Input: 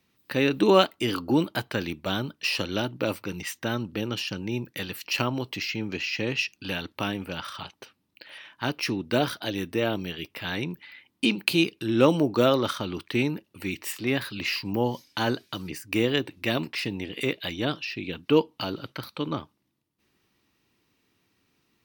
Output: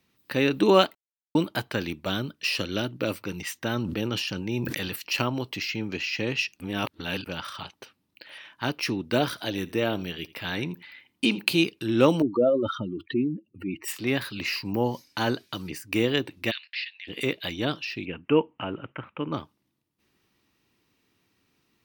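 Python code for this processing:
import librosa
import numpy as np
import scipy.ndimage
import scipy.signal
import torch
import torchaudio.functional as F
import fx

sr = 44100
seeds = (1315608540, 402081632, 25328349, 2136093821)

y = fx.peak_eq(x, sr, hz=870.0, db=-6.0, octaves=0.62, at=(2.1, 3.2))
y = fx.sustainer(y, sr, db_per_s=27.0, at=(3.74, 4.96))
y = fx.echo_single(y, sr, ms=83, db=-20.5, at=(9.24, 11.52))
y = fx.spec_expand(y, sr, power=2.6, at=(12.22, 13.88))
y = fx.peak_eq(y, sr, hz=3300.0, db=-7.0, octaves=0.27, at=(14.42, 15.21))
y = fx.ellip_bandpass(y, sr, low_hz=1700.0, high_hz=4500.0, order=3, stop_db=70, at=(16.5, 17.07), fade=0.02)
y = fx.ellip_lowpass(y, sr, hz=2800.0, order=4, stop_db=40, at=(18.04, 19.32), fade=0.02)
y = fx.edit(y, sr, fx.silence(start_s=0.95, length_s=0.4),
    fx.reverse_span(start_s=6.6, length_s=0.66), tone=tone)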